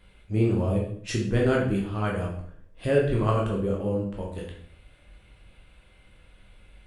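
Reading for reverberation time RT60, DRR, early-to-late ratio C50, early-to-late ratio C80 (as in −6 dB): 0.60 s, −2.0 dB, 4.5 dB, 8.5 dB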